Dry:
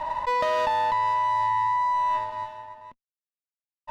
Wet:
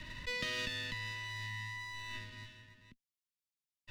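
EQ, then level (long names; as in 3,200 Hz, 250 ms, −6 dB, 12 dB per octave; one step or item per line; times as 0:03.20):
Chebyshev band-stop filter 140–4,400 Hz, order 2
three-way crossover with the lows and the highs turned down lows −15 dB, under 270 Hz, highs −16 dB, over 2,300 Hz
+15.0 dB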